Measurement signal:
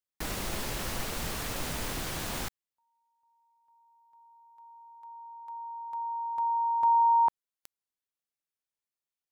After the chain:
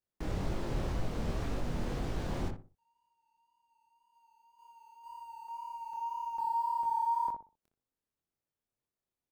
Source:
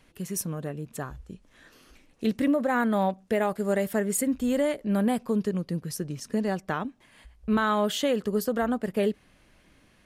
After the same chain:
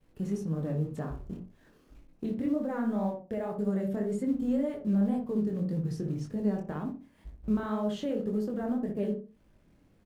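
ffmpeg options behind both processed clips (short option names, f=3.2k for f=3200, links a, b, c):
-filter_complex "[0:a]aeval=exprs='val(0)+0.5*0.00794*sgn(val(0))':c=same,alimiter=limit=-23dB:level=0:latency=1:release=306,agate=range=-33dB:threshold=-42dB:ratio=3:release=23:detection=rms,acrusher=bits=6:mode=log:mix=0:aa=0.000001,acrossover=split=7400[a][b];[b]acompressor=threshold=-52dB:ratio=4:attack=1:release=60[c];[a][c]amix=inputs=2:normalize=0,tiltshelf=f=910:g=7.5,asplit=2[d][e];[e]adelay=61,lowpass=f=1k:p=1,volume=-3.5dB,asplit=2[f][g];[g]adelay=61,lowpass=f=1k:p=1,volume=0.34,asplit=2[h][i];[i]adelay=61,lowpass=f=1k:p=1,volume=0.34,asplit=2[j][k];[k]adelay=61,lowpass=f=1k:p=1,volume=0.34[l];[d][f][h][j][l]amix=inputs=5:normalize=0,flanger=delay=19:depth=6.9:speed=1.9,volume=-3dB"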